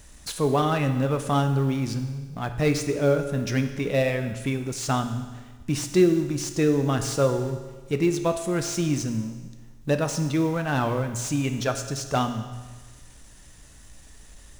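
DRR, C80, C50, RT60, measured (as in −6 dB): 6.5 dB, 10.5 dB, 9.0 dB, 1.4 s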